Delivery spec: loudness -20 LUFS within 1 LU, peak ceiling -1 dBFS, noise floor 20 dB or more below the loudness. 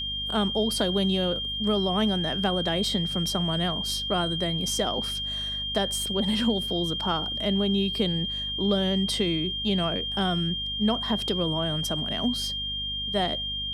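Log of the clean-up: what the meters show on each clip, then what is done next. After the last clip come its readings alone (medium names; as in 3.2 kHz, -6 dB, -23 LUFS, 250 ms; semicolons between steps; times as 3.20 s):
hum 50 Hz; highest harmonic 250 Hz; hum level -38 dBFS; steady tone 3.2 kHz; tone level -29 dBFS; loudness -25.5 LUFS; peak level -11.0 dBFS; loudness target -20.0 LUFS
-> hum notches 50/100/150/200/250 Hz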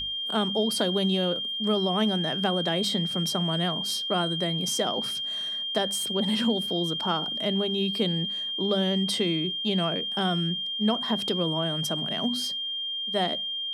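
hum not found; steady tone 3.2 kHz; tone level -29 dBFS
-> band-stop 3.2 kHz, Q 30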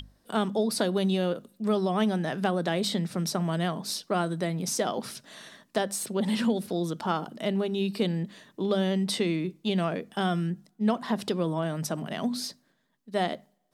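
steady tone not found; loudness -29.0 LUFS; peak level -12.0 dBFS; loudness target -20.0 LUFS
-> trim +9 dB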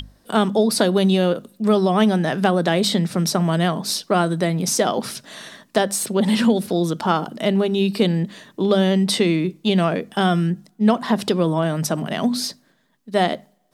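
loudness -20.0 LUFS; peak level -3.0 dBFS; noise floor -60 dBFS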